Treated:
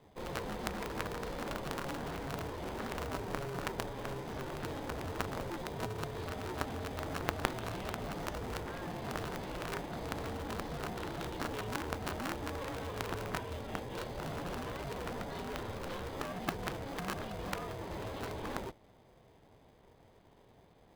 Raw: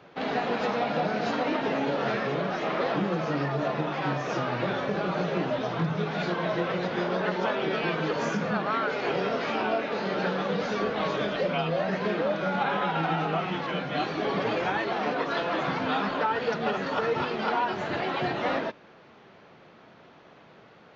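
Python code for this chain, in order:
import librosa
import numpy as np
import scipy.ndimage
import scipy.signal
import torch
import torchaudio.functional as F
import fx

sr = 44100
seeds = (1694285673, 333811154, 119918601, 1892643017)

p1 = scipy.signal.sosfilt(scipy.signal.butter(2, 4100.0, 'lowpass', fs=sr, output='sos'), x)
p2 = fx.band_shelf(p1, sr, hz=1600.0, db=-8.5, octaves=1.7)
p3 = p2 * np.sin(2.0 * np.pi * 270.0 * np.arange(len(p2)) / sr)
p4 = fx.sample_hold(p3, sr, seeds[0], rate_hz=1400.0, jitter_pct=0)
p5 = p3 + F.gain(torch.from_numpy(p4), -3.5).numpy()
p6 = fx.cheby_harmonics(p5, sr, harmonics=(3,), levels_db=(-7,), full_scale_db=-12.0)
y = F.gain(torch.from_numpy(p6), 2.0).numpy()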